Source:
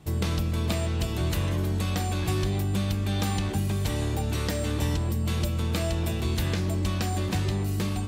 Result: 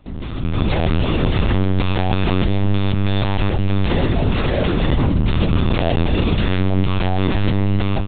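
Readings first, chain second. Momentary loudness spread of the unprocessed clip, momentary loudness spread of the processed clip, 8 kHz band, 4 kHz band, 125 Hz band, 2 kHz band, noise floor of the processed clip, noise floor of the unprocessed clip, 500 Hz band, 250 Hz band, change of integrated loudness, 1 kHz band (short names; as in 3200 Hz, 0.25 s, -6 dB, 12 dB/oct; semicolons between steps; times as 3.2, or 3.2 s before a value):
1 LU, 2 LU, under -35 dB, +7.0 dB, +8.0 dB, +9.5 dB, -23 dBFS, -29 dBFS, +10.5 dB, +10.5 dB, +8.5 dB, +10.0 dB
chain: limiter -23 dBFS, peak gain reduction 7 dB; AGC gain up to 12.5 dB; LPC vocoder at 8 kHz pitch kept; gain +1.5 dB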